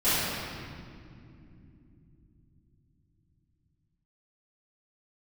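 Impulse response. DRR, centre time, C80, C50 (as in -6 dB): -17.5 dB, 169 ms, -2.5 dB, -5.0 dB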